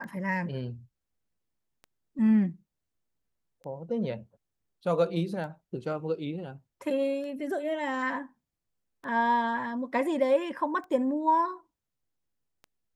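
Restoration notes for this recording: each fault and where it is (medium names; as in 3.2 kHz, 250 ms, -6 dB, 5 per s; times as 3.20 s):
tick 33 1/3 rpm -32 dBFS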